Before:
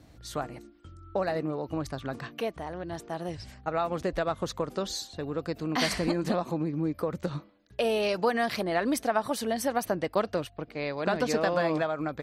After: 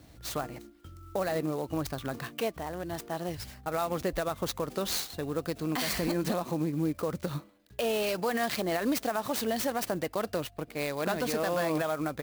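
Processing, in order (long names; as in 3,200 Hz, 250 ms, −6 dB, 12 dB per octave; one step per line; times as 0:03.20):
high-shelf EQ 5,100 Hz +10.5 dB
brickwall limiter −20.5 dBFS, peak gain reduction 8.5 dB
converter with an unsteady clock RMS 0.028 ms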